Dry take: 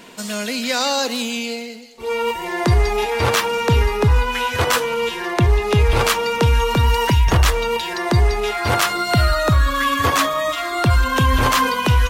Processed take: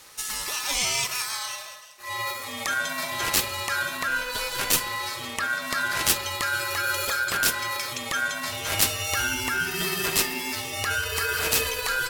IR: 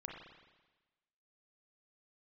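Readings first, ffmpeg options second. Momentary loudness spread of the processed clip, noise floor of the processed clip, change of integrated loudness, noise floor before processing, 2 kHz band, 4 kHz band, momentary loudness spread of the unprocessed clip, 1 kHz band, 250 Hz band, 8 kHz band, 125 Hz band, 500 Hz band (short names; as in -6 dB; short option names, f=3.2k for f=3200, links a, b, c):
7 LU, -39 dBFS, -7.0 dB, -30 dBFS, -3.0 dB, -4.0 dB, 7 LU, -10.5 dB, -15.0 dB, +1.5 dB, -22.5 dB, -15.0 dB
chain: -filter_complex "[0:a]crystalizer=i=5.5:c=0,asplit=2[a][b];[1:a]atrim=start_sample=2205,asetrate=41013,aresample=44100[c];[b][c]afir=irnorm=-1:irlink=0,volume=-2dB[d];[a][d]amix=inputs=2:normalize=0,aeval=exprs='val(0)*sin(2*PI*1500*n/s)':c=same,volume=-14.5dB"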